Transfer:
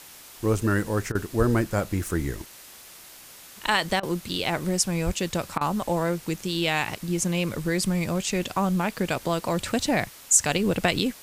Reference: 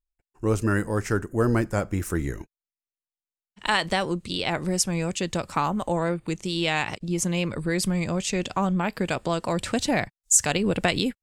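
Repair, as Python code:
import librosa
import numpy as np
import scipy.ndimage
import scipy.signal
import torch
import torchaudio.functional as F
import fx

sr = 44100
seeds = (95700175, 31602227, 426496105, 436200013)

y = fx.highpass(x, sr, hz=140.0, slope=24, at=(1.38, 1.5), fade=0.02)
y = fx.highpass(y, sr, hz=140.0, slope=24, at=(5.05, 5.17), fade=0.02)
y = fx.fix_interpolate(y, sr, at_s=(1.12, 4.0, 5.58), length_ms=29.0)
y = fx.noise_reduce(y, sr, print_start_s=2.76, print_end_s=3.26, reduce_db=30.0)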